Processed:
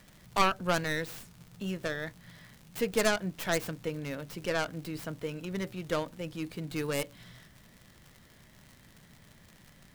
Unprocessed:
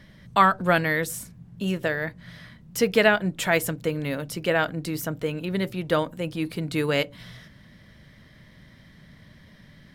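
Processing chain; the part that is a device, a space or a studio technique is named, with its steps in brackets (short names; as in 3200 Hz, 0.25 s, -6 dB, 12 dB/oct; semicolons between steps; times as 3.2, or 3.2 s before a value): record under a worn stylus (tracing distortion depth 0.32 ms; crackle 100/s -33 dBFS; pink noise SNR 28 dB); gain -8.5 dB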